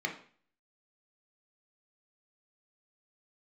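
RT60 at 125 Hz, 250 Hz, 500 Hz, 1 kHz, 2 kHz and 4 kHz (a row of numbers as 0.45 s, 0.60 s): 0.50 s, 0.50 s, 0.45 s, 0.45 s, 0.45 s, 0.45 s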